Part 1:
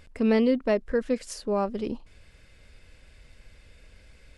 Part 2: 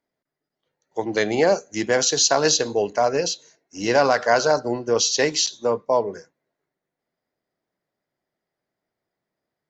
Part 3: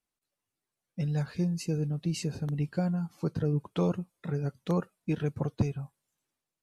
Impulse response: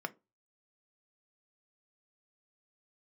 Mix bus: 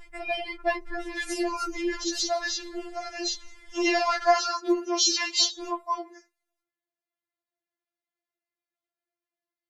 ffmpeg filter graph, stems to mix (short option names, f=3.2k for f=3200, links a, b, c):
-filter_complex "[0:a]volume=-4dB,asplit=2[a][b];[b]volume=-4.5dB[c];[1:a]highpass=290,equalizer=f=2.7k:t=o:w=1.5:g=7,volume=-9.5dB,afade=t=in:st=2.84:d=0.69:silence=0.354813,afade=t=out:st=5.96:d=0.35:silence=0.398107[d];[2:a]volume=-5.5dB,asplit=3[e][f][g];[e]atrim=end=2.98,asetpts=PTS-STARTPTS,afade=t=out:st=2.976:d=0.004:c=hsin[h];[f]atrim=start=2.98:end=3.68,asetpts=PTS-STARTPTS,volume=0[i];[g]atrim=start=3.68,asetpts=PTS-STARTPTS,afade=t=in:d=0.004:c=hsin[j];[h][i][j]concat=n=3:v=0:a=1[k];[3:a]atrim=start_sample=2205[l];[c][l]afir=irnorm=-1:irlink=0[m];[a][d][k][m]amix=inputs=4:normalize=0,acontrast=71,afftfilt=real='re*4*eq(mod(b,16),0)':imag='im*4*eq(mod(b,16),0)':win_size=2048:overlap=0.75"